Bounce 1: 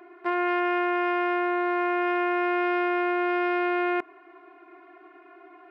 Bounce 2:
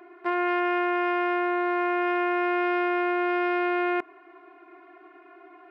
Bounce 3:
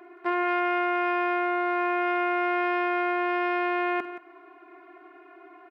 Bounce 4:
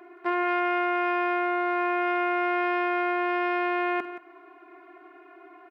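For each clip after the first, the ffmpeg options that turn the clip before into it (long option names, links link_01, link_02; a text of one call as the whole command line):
ffmpeg -i in.wav -af anull out.wav
ffmpeg -i in.wav -af "aecho=1:1:49|174:0.178|0.224" out.wav
ffmpeg -i in.wav -af "bandreject=frequency=61.31:width_type=h:width=4,bandreject=frequency=122.62:width_type=h:width=4" out.wav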